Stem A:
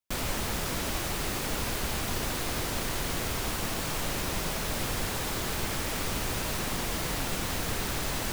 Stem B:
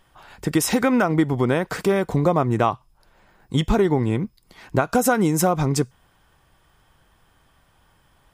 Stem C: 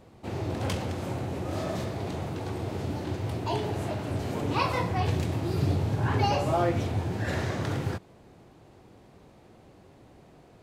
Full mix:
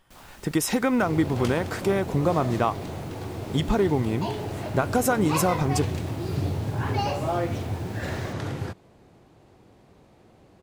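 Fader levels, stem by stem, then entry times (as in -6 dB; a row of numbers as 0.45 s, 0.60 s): -18.5 dB, -4.0 dB, -1.0 dB; 0.00 s, 0.00 s, 0.75 s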